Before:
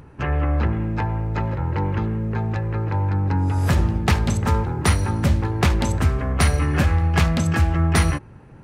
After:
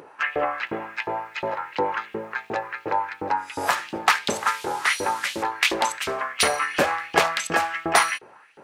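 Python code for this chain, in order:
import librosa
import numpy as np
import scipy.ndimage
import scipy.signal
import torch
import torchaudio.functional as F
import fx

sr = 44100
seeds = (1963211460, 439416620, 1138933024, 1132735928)

y = fx.delta_mod(x, sr, bps=64000, step_db=-35.0, at=(4.32, 5.43))
y = fx.filter_lfo_highpass(y, sr, shape='saw_up', hz=2.8, low_hz=390.0, high_hz=3500.0, q=2.1)
y = y * librosa.db_to_amplitude(3.0)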